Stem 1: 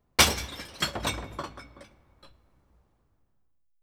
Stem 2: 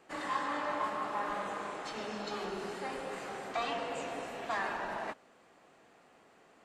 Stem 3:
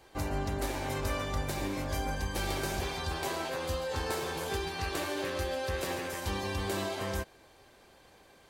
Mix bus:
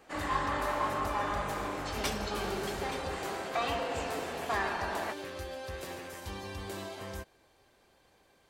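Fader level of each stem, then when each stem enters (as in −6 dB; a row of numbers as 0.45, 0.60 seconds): −16.5, +2.5, −7.0 decibels; 1.85, 0.00, 0.00 seconds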